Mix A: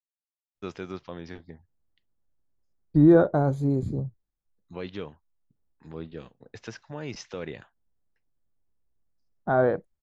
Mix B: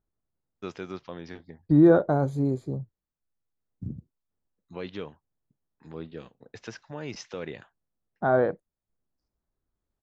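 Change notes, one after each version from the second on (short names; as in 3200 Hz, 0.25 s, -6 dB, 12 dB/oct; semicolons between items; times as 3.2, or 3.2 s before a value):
second voice: entry -1.25 s; master: add low shelf 63 Hz -11 dB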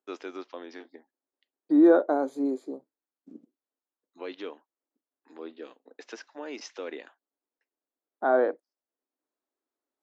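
first voice: entry -0.55 s; master: add elliptic high-pass 270 Hz, stop band 60 dB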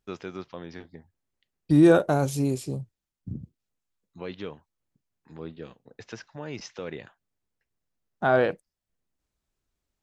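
second voice: remove running mean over 16 samples; master: remove elliptic high-pass 270 Hz, stop band 60 dB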